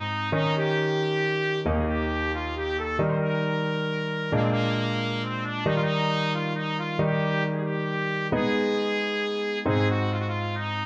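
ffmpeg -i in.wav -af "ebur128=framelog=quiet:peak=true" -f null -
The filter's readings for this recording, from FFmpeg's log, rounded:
Integrated loudness:
  I:         -26.0 LUFS
  Threshold: -36.0 LUFS
Loudness range:
  LRA:         0.7 LU
  Threshold: -46.1 LUFS
  LRA low:   -26.4 LUFS
  LRA high:  -25.7 LUFS
True peak:
  Peak:      -11.1 dBFS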